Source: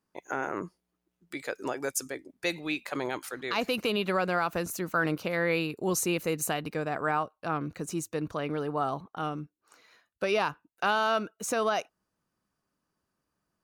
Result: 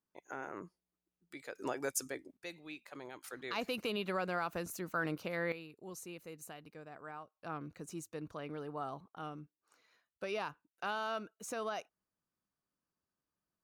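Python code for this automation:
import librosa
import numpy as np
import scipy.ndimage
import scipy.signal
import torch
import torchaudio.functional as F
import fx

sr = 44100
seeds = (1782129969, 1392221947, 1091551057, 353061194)

y = fx.gain(x, sr, db=fx.steps((0.0, -11.5), (1.55, -5.0), (2.37, -16.0), (3.24, -8.5), (5.52, -19.5), (7.35, -11.5)))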